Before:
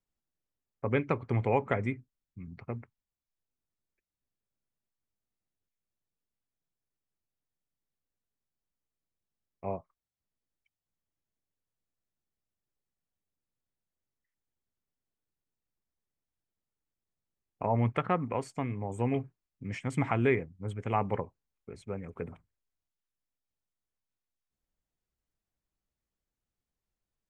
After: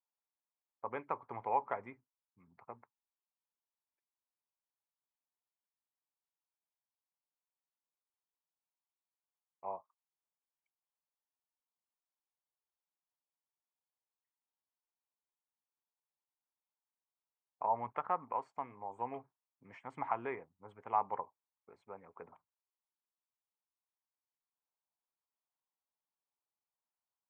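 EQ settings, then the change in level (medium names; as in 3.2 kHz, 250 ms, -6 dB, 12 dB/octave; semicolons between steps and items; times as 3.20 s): band-pass filter 940 Hz, Q 3.4; +2.0 dB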